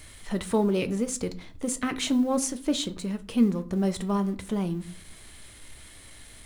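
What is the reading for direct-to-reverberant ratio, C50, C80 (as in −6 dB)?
10.0 dB, 18.5 dB, 22.5 dB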